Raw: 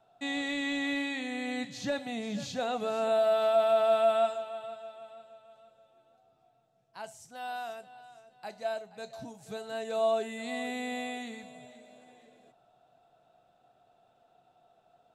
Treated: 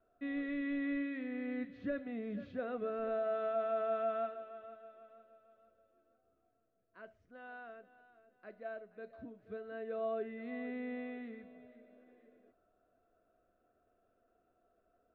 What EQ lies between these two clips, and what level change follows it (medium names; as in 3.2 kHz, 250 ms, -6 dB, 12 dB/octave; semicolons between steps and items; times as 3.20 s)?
four-pole ladder low-pass 1.9 kHz, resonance 25%; bass shelf 99 Hz +11 dB; static phaser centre 350 Hz, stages 4; +3.0 dB